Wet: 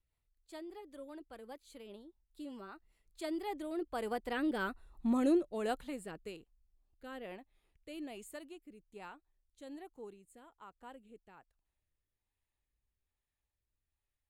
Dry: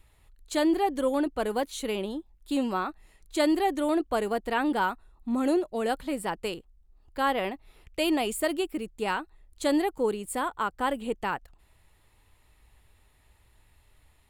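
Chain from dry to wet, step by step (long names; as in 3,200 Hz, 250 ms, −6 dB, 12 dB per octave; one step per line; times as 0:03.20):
source passing by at 0:04.94, 16 m/s, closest 6.1 metres
rotating-speaker cabinet horn 5 Hz, later 1.2 Hz, at 0:02.87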